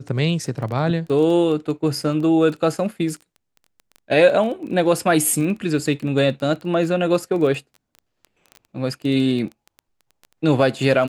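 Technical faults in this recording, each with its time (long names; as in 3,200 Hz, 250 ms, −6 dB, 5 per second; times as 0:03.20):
surface crackle 13 per second −28 dBFS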